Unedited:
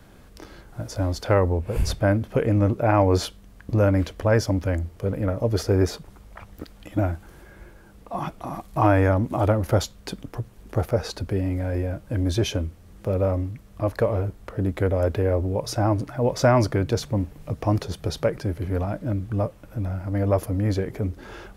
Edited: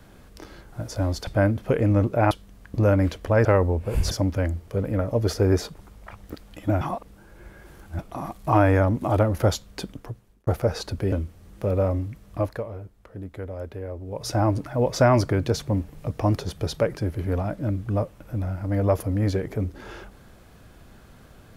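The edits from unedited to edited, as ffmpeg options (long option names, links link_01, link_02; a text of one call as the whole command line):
ffmpeg -i in.wav -filter_complex "[0:a]asplit=11[link_01][link_02][link_03][link_04][link_05][link_06][link_07][link_08][link_09][link_10][link_11];[link_01]atrim=end=1.272[link_12];[link_02]atrim=start=1.928:end=2.972[link_13];[link_03]atrim=start=3.258:end=4.402[link_14];[link_04]atrim=start=1.268:end=1.932[link_15];[link_05]atrim=start=4.398:end=7.102[link_16];[link_06]atrim=start=7.098:end=8.282,asetpts=PTS-STARTPTS,areverse[link_17];[link_07]atrim=start=8.278:end=10.76,asetpts=PTS-STARTPTS,afade=type=out:start_time=1.832:duration=0.65[link_18];[link_08]atrim=start=10.76:end=11.412,asetpts=PTS-STARTPTS,afade=type=in:duration=0.004:curve=hsin[link_19];[link_09]atrim=start=12.548:end=14.14,asetpts=PTS-STARTPTS,afade=type=out:start_time=1.292:duration=0.3:curve=qua:silence=0.251189[link_20];[link_10]atrim=start=14.14:end=15.42,asetpts=PTS-STARTPTS,volume=-12dB[link_21];[link_11]atrim=start=15.42,asetpts=PTS-STARTPTS,afade=type=in:duration=0.3:curve=qua:silence=0.251189[link_22];[link_12][link_13]acrossfade=duration=0.004:curve1=hsin:curve2=hsin[link_23];[link_23][link_14]acrossfade=duration=0.004:curve1=hsin:curve2=hsin[link_24];[link_24][link_15]acrossfade=duration=0.004:curve1=hsin:curve2=hsin[link_25];[link_25][link_16]acrossfade=duration=0.004:curve1=hsin:curve2=hsin[link_26];[link_26][link_17]acrossfade=duration=0.004:curve1=hsin:curve2=hsin[link_27];[link_18][link_19]concat=n=2:v=0:a=1[link_28];[link_27][link_28]acrossfade=duration=0.004:curve1=hsin:curve2=hsin[link_29];[link_20][link_21][link_22]concat=n=3:v=0:a=1[link_30];[link_29][link_30]acrossfade=duration=0.004:curve1=hsin:curve2=hsin" out.wav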